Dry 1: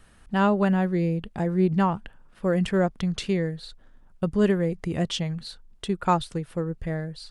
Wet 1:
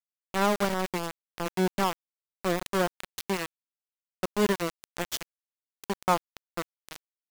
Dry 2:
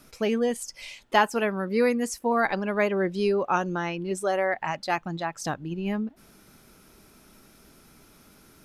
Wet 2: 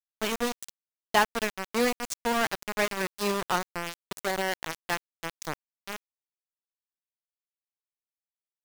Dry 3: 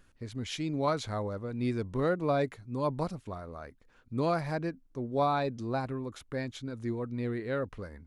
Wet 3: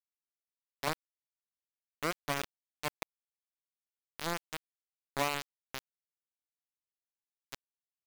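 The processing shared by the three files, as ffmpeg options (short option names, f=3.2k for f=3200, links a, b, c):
-filter_complex "[0:a]equalizer=f=6.8k:w=1:g=7,acrossover=split=170|950[a][b][c];[a]acompressor=threshold=-45dB:ratio=5[d];[d][b][c]amix=inputs=3:normalize=0,aeval=exprs='val(0)*gte(abs(val(0)),0.0891)':c=same,volume=-2dB"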